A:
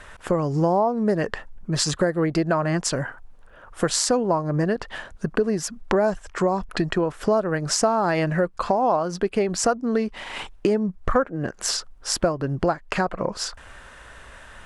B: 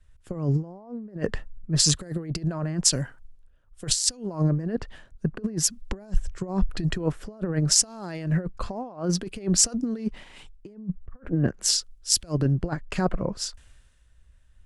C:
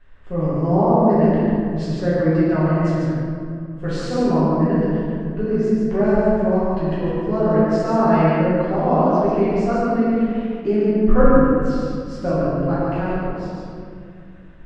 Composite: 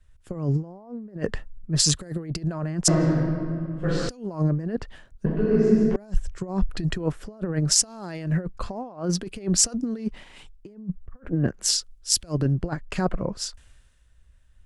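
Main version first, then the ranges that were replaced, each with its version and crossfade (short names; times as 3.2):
B
2.88–4.09 from C
5.26–5.96 from C
not used: A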